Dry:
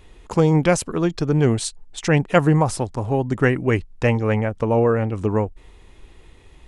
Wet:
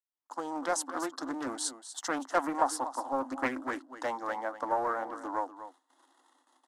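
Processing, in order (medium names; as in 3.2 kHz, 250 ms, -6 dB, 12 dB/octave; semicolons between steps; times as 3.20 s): fade-in on the opening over 0.84 s; gate with hold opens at -37 dBFS; waveshaping leveller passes 1; rippled Chebyshev high-pass 260 Hz, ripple 3 dB; in parallel at -11 dB: saturation -16 dBFS, distortion -11 dB; on the sum: static phaser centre 1 kHz, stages 4; on a send: delay 242 ms -12.5 dB; on the sum: resampled via 32 kHz; loudspeaker Doppler distortion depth 0.36 ms; trim -7 dB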